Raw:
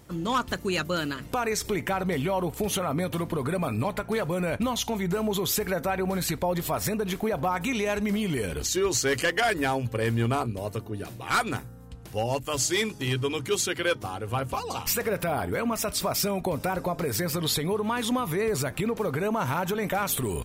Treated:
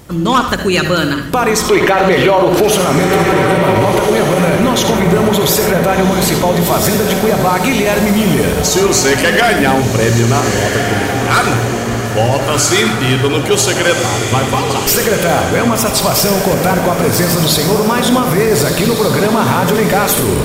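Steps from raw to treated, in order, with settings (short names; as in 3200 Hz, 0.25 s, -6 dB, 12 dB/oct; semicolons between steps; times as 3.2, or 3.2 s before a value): spectral gain 1.66–2.7, 310–6400 Hz +10 dB; diffused feedback echo 1.455 s, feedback 48%, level -6 dB; reverb RT60 0.55 s, pre-delay 56 ms, DRR 7 dB; maximiser +15 dB; gain -1 dB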